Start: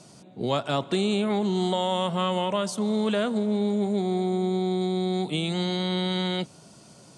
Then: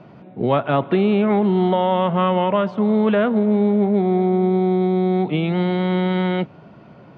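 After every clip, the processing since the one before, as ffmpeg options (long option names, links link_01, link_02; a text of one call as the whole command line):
ffmpeg -i in.wav -af "lowpass=frequency=2400:width=0.5412,lowpass=frequency=2400:width=1.3066,volume=8dB" out.wav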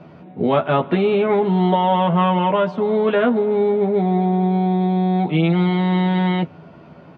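ffmpeg -i in.wav -filter_complex "[0:a]asplit=2[link_01][link_02];[link_02]adelay=12,volume=-3dB[link_03];[link_01][link_03]amix=inputs=2:normalize=0" out.wav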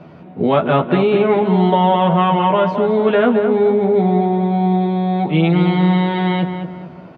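ffmpeg -i in.wav -filter_complex "[0:a]asplit=2[link_01][link_02];[link_02]adelay=215,lowpass=frequency=2000:poles=1,volume=-7dB,asplit=2[link_03][link_04];[link_04]adelay=215,lowpass=frequency=2000:poles=1,volume=0.42,asplit=2[link_05][link_06];[link_06]adelay=215,lowpass=frequency=2000:poles=1,volume=0.42,asplit=2[link_07][link_08];[link_08]adelay=215,lowpass=frequency=2000:poles=1,volume=0.42,asplit=2[link_09][link_10];[link_10]adelay=215,lowpass=frequency=2000:poles=1,volume=0.42[link_11];[link_01][link_03][link_05][link_07][link_09][link_11]amix=inputs=6:normalize=0,volume=2.5dB" out.wav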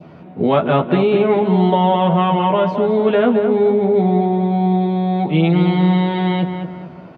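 ffmpeg -i in.wav -af "adynamicequalizer=threshold=0.0282:dfrequency=1500:dqfactor=1.1:tfrequency=1500:tqfactor=1.1:attack=5:release=100:ratio=0.375:range=2:mode=cutabove:tftype=bell" out.wav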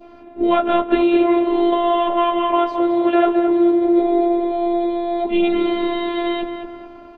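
ffmpeg -i in.wav -af "afftfilt=real='hypot(re,im)*cos(PI*b)':imag='0':win_size=512:overlap=0.75,volume=3dB" out.wav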